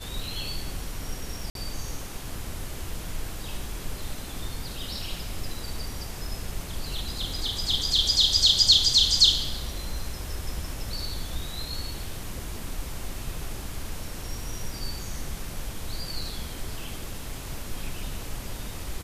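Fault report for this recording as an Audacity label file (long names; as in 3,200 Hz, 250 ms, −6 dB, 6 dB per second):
1.500000	1.550000	drop-out 52 ms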